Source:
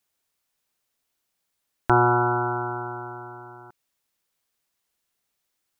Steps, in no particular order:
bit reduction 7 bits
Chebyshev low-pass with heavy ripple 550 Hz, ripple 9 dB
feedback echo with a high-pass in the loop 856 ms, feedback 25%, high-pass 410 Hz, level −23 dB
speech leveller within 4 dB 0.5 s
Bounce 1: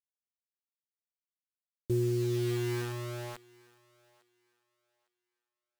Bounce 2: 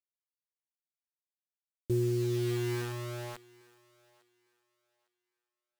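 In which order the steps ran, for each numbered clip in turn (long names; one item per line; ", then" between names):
Chebyshev low-pass with heavy ripple, then bit reduction, then speech leveller, then feedback echo with a high-pass in the loop
Chebyshev low-pass with heavy ripple, then bit reduction, then feedback echo with a high-pass in the loop, then speech leveller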